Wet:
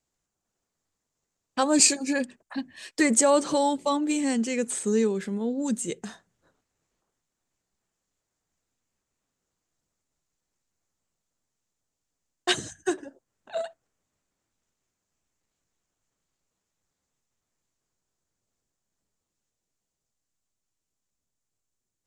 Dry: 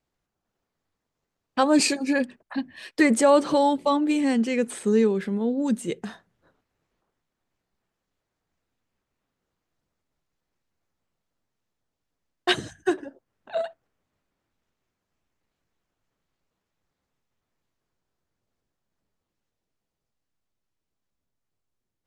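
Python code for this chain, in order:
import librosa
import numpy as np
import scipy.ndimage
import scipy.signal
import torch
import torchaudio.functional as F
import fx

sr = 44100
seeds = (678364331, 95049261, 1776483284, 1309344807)

y = fx.peak_eq(x, sr, hz=7200.0, db=14.0, octaves=0.85)
y = y * 10.0 ** (-3.5 / 20.0)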